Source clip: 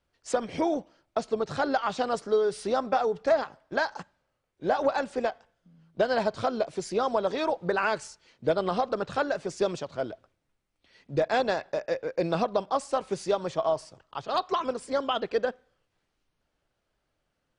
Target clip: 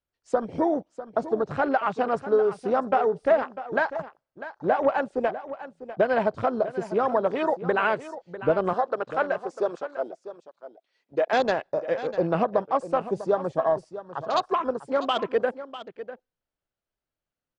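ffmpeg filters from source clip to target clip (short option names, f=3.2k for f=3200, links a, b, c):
-filter_complex "[0:a]asettb=1/sr,asplit=3[a][b][c];[a]atrim=end=8.734[d];[b]atrim=start=8.73:end=11.33,asetpts=PTS-STARTPTS,afade=t=in:d=0.004:c=qsin,afade=t=out:st=2.596:d=0.004:c=qsin,highpass=410[e];[c]atrim=start=11.326[f];[d][e]acrossfade=d=0.004:c1=hsin:c2=qsin[g];[g][f]acrossfade=d=0.004:c1=qsin:c2=hsin,afwtdn=0.0126,aecho=1:1:648:0.211,volume=3dB"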